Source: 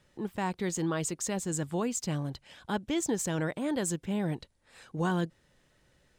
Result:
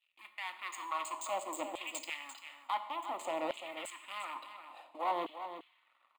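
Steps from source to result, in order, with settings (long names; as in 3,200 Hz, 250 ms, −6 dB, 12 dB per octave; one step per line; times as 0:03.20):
adaptive Wiener filter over 41 samples
Butterworth high-pass 250 Hz 48 dB per octave
treble cut that deepens with the level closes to 1,700 Hz, closed at −27 dBFS
reversed playback
downward compressor 10 to 1, threshold −44 dBFS, peak gain reduction 16.5 dB
reversed playback
leveller curve on the samples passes 3
phaser with its sweep stopped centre 1,600 Hz, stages 6
coupled-rooms reverb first 0.82 s, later 2.6 s, from −18 dB, DRR 8.5 dB
auto-filter high-pass saw down 0.57 Hz 470–2,900 Hz
on a send: single-tap delay 344 ms −10 dB
on the sum: level +8.5 dB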